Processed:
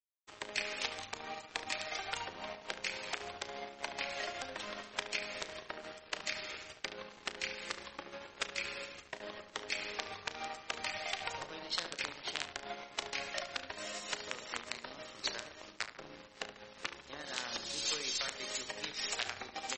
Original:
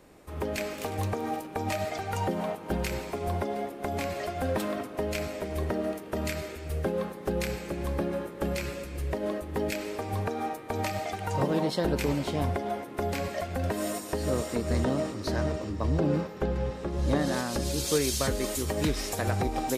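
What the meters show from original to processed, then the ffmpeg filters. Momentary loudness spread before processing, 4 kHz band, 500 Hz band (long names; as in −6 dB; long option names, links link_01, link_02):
6 LU, +1.0 dB, −16.5 dB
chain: -filter_complex "[0:a]acompressor=threshold=-34dB:ratio=8,aeval=exprs='(mod(21.1*val(0)+1,2)-1)/21.1':channel_layout=same,bandpass=frequency=3500:width_type=q:width=0.72:csg=0,aeval=exprs='sgn(val(0))*max(abs(val(0))-0.00211,0)':channel_layout=same,aeval=exprs='0.0562*(cos(1*acos(clip(val(0)/0.0562,-1,1)))-cos(1*PI/2))+0.000708*(cos(4*acos(clip(val(0)/0.0562,-1,1)))-cos(4*PI/2))+0.00112*(cos(5*acos(clip(val(0)/0.0562,-1,1)))-cos(5*PI/2))+0.000447*(cos(8*acos(clip(val(0)/0.0562,-1,1)))-cos(8*PI/2))':channel_layout=same,asplit=2[link_01][link_02];[link_02]adelay=34,volume=-13dB[link_03];[link_01][link_03]amix=inputs=2:normalize=0,asplit=2[link_04][link_05];[link_05]adelay=72,lowpass=frequency=2700:poles=1,volume=-9.5dB,asplit=2[link_06][link_07];[link_07]adelay=72,lowpass=frequency=2700:poles=1,volume=0.52,asplit=2[link_08][link_09];[link_09]adelay=72,lowpass=frequency=2700:poles=1,volume=0.52,asplit=2[link_10][link_11];[link_11]adelay=72,lowpass=frequency=2700:poles=1,volume=0.52,asplit=2[link_12][link_13];[link_13]adelay=72,lowpass=frequency=2700:poles=1,volume=0.52,asplit=2[link_14][link_15];[link_15]adelay=72,lowpass=frequency=2700:poles=1,volume=0.52[link_16];[link_06][link_08][link_10][link_12][link_14][link_16]amix=inputs=6:normalize=0[link_17];[link_04][link_17]amix=inputs=2:normalize=0,volume=9.5dB" -ar 48000 -c:a libmp3lame -b:a 32k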